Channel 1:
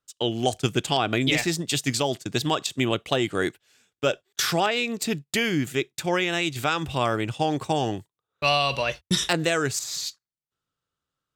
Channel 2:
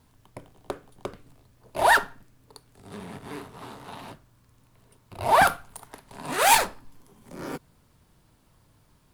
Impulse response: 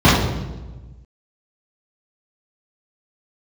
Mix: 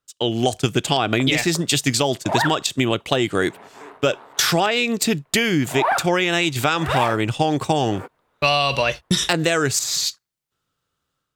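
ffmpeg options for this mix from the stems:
-filter_complex "[0:a]dynaudnorm=f=110:g=5:m=2.11,volume=1.33[s0];[1:a]acrossover=split=370 2600:gain=0.112 1 0.112[s1][s2][s3];[s1][s2][s3]amix=inputs=3:normalize=0,adelay=500,volume=1.19[s4];[s0][s4]amix=inputs=2:normalize=0,acompressor=threshold=0.178:ratio=4"

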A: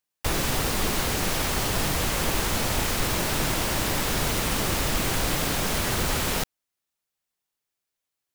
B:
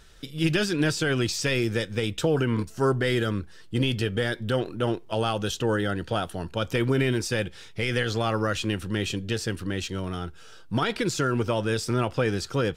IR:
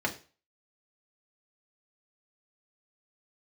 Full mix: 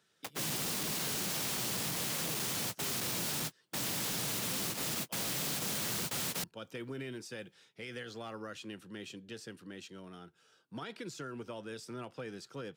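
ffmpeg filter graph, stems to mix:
-filter_complex "[0:a]asoftclip=type=hard:threshold=0.075,volume=0.841[s0];[1:a]volume=0.15,asplit=2[s1][s2];[s2]apad=whole_len=368163[s3];[s0][s3]sidechaingate=range=0.00126:threshold=0.00316:ratio=16:detection=peak[s4];[s4][s1]amix=inputs=2:normalize=0,highpass=f=140:w=0.5412,highpass=f=140:w=1.3066,acrossover=split=180|3000[s5][s6][s7];[s6]acompressor=threshold=0.0126:ratio=6[s8];[s5][s8][s7]amix=inputs=3:normalize=0,asoftclip=type=hard:threshold=0.0224"

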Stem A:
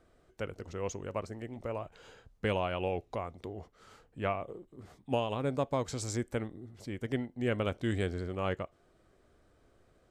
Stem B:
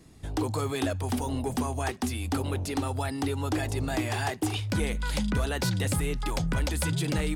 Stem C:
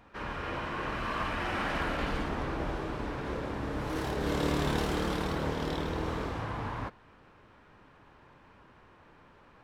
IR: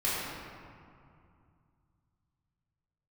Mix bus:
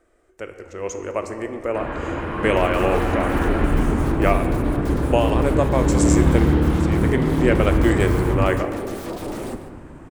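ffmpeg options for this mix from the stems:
-filter_complex "[0:a]equalizer=f=125:t=o:w=1:g=-11,equalizer=f=250:t=o:w=1:g=-7,equalizer=f=2000:t=o:w=1:g=5,equalizer=f=4000:t=o:w=1:g=-7,equalizer=f=8000:t=o:w=1:g=7,volume=1.06,asplit=2[s0][s1];[s1]volume=0.168[s2];[1:a]bass=f=250:g=9,treble=f=4000:g=12,aeval=exprs='0.0398*(abs(mod(val(0)/0.0398+3,4)-2)-1)':c=same,highshelf=f=2300:g=-11,adelay=2200,volume=0.316,asplit=3[s3][s4][s5];[s4]volume=0.15[s6];[s5]volume=0.237[s7];[2:a]lowpass=2400,asubboost=boost=5:cutoff=170,adelay=1600,volume=0.631,asplit=2[s8][s9];[s9]volume=0.631[s10];[3:a]atrim=start_sample=2205[s11];[s2][s6]amix=inputs=2:normalize=0[s12];[s12][s11]afir=irnorm=-1:irlink=0[s13];[s7][s10]amix=inputs=2:normalize=0,aecho=0:1:147:1[s14];[s0][s3][s8][s13][s14]amix=inputs=5:normalize=0,equalizer=f=320:t=o:w=1:g=10,dynaudnorm=f=720:g=3:m=3.35"

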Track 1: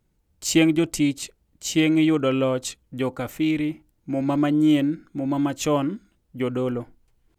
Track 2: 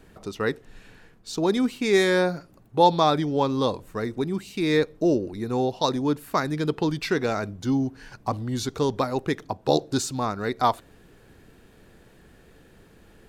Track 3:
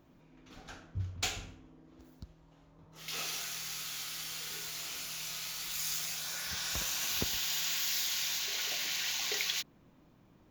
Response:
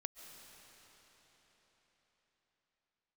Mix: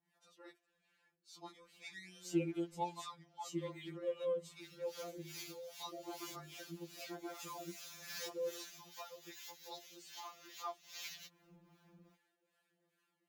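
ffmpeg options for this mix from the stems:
-filter_complex "[0:a]equalizer=f=430:w=0.69:g=6.5,adelay=1800,volume=0.119[s0];[1:a]highpass=f=700:p=1,flanger=delay=1:depth=5.8:regen=-11:speed=0.34:shape=sinusoidal,adynamicequalizer=threshold=0.00631:dfrequency=1600:dqfactor=0.7:tfrequency=1600:tqfactor=0.7:attack=5:release=100:ratio=0.375:range=2:mode=cutabove:tftype=highshelf,volume=0.211,asplit=2[s1][s2];[2:a]acompressor=threshold=0.00891:ratio=12,adelay=1650,volume=1.41[s3];[s2]apad=whole_len=536039[s4];[s3][s4]sidechaincompress=threshold=0.00126:ratio=8:attack=43:release=248[s5];[s0][s1][s5]amix=inputs=3:normalize=0,highpass=f=83:p=1,acrossover=split=630[s6][s7];[s6]aeval=exprs='val(0)*(1-0.7/2+0.7/2*cos(2*PI*2.5*n/s))':c=same[s8];[s7]aeval=exprs='val(0)*(1-0.7/2-0.7/2*cos(2*PI*2.5*n/s))':c=same[s9];[s8][s9]amix=inputs=2:normalize=0,afftfilt=real='re*2.83*eq(mod(b,8),0)':imag='im*2.83*eq(mod(b,8),0)':win_size=2048:overlap=0.75"

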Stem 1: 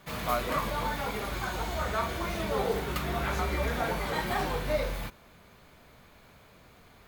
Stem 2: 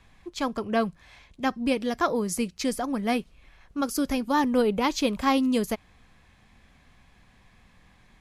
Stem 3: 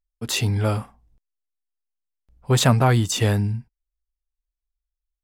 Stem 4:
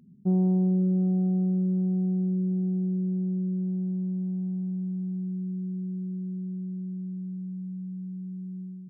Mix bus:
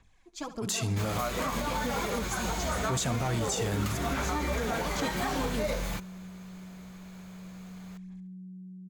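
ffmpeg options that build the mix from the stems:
-filter_complex "[0:a]adelay=900,volume=1.19[s0];[1:a]aphaser=in_gain=1:out_gain=1:delay=4.4:decay=0.65:speed=1.6:type=sinusoidal,volume=0.224,asplit=2[s1][s2];[s2]volume=0.224[s3];[2:a]highpass=100,asoftclip=type=tanh:threshold=0.316,adelay=400,volume=0.631,asplit=2[s4][s5];[s5]volume=0.106[s6];[3:a]acompressor=threshold=0.0178:ratio=6,aphaser=in_gain=1:out_gain=1:delay=1.4:decay=0.3:speed=0.38:type=triangular,adelay=400,volume=0.335[s7];[s3][s6]amix=inputs=2:normalize=0,aecho=0:1:69|138|207|276|345|414:1|0.42|0.176|0.0741|0.0311|0.0131[s8];[s0][s1][s4][s7][s8]amix=inputs=5:normalize=0,equalizer=f=6800:t=o:w=0.65:g=9,alimiter=limit=0.0891:level=0:latency=1:release=102"

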